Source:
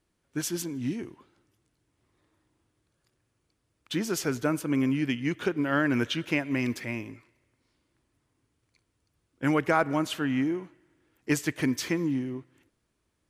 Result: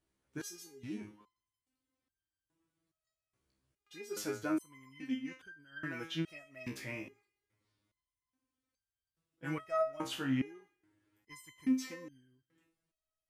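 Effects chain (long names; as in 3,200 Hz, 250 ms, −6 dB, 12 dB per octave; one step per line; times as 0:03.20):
step-sequenced resonator 2.4 Hz 66–1,600 Hz
level +1 dB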